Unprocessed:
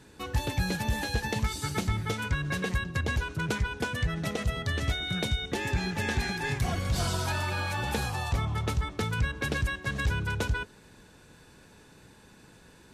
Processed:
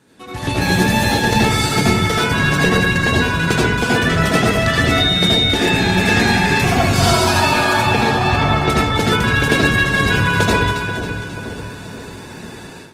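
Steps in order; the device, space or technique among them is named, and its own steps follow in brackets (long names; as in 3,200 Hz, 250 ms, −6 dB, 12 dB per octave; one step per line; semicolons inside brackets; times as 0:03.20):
0:07.81–0:08.70: high-frequency loss of the air 140 metres
echo with a time of its own for lows and highs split 750 Hz, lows 486 ms, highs 272 ms, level −8.5 dB
far-field microphone of a smart speaker (convolution reverb RT60 0.45 s, pre-delay 72 ms, DRR −4.5 dB; high-pass filter 120 Hz 12 dB per octave; automatic gain control gain up to 15 dB; Opus 20 kbit/s 48,000 Hz)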